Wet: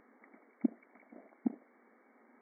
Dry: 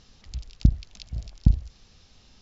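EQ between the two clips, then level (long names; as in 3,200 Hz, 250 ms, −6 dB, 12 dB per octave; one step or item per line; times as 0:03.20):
linear-phase brick-wall band-pass 220–2,300 Hz
low-shelf EQ 370 Hz +3.5 dB
0.0 dB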